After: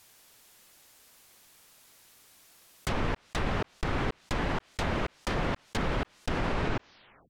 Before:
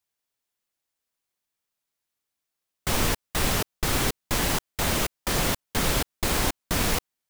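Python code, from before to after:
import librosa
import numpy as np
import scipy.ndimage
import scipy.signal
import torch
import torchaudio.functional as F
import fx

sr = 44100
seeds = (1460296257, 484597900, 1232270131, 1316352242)

y = fx.tape_stop_end(x, sr, length_s=1.38)
y = fx.env_lowpass_down(y, sr, base_hz=2100.0, full_db=-22.0)
y = fx.env_flatten(y, sr, amount_pct=50)
y = y * 10.0 ** (-5.5 / 20.0)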